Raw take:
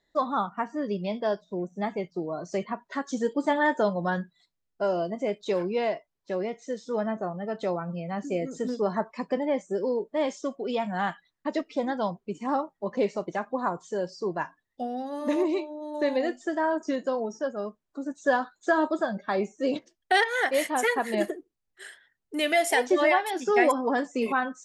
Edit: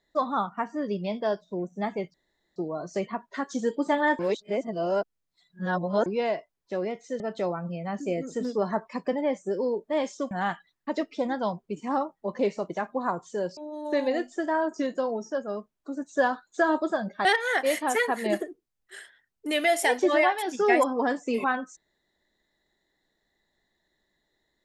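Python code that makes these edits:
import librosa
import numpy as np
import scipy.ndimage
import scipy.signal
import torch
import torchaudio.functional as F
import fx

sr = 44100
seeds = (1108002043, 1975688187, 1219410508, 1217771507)

y = fx.edit(x, sr, fx.insert_room_tone(at_s=2.14, length_s=0.42),
    fx.reverse_span(start_s=3.77, length_s=1.87),
    fx.cut(start_s=6.78, length_s=0.66),
    fx.cut(start_s=10.55, length_s=0.34),
    fx.cut(start_s=14.15, length_s=1.51),
    fx.cut(start_s=19.34, length_s=0.79), tone=tone)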